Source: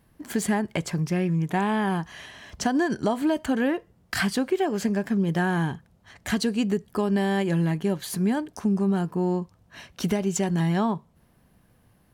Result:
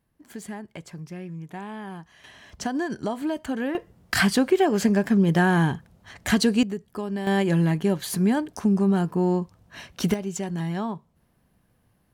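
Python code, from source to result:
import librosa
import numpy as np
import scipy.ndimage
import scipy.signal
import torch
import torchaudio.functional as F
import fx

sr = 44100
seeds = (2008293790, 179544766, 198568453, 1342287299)

y = fx.gain(x, sr, db=fx.steps((0.0, -12.0), (2.24, -4.0), (3.75, 4.5), (6.63, -6.0), (7.27, 2.5), (10.14, -5.0)))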